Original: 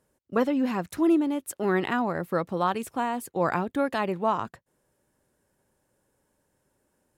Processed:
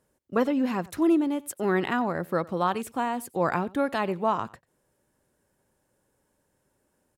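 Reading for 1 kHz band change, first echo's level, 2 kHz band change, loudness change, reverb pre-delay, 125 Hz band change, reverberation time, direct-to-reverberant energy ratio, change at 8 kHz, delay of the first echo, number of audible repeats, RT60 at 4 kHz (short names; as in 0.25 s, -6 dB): 0.0 dB, -22.5 dB, 0.0 dB, 0.0 dB, none, 0.0 dB, none, none, 0.0 dB, 92 ms, 1, none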